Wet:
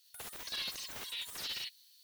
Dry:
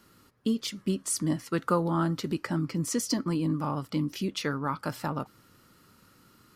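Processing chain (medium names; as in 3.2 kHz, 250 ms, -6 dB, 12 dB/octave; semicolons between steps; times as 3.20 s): high-pass 820 Hz 24 dB/octave; peaking EQ 8.4 kHz +15 dB 0.78 oct; gated-style reverb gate 250 ms rising, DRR -2 dB; wide varispeed 3.23×; slew-rate limiter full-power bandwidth 100 Hz; trim -4.5 dB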